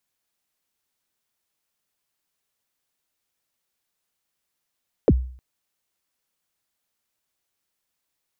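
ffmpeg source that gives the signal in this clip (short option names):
-f lavfi -i "aevalsrc='0.355*pow(10,-3*t/0.5)*sin(2*PI*(580*0.045/log(63/580)*(exp(log(63/580)*min(t,0.045)/0.045)-1)+63*max(t-0.045,0)))':d=0.31:s=44100"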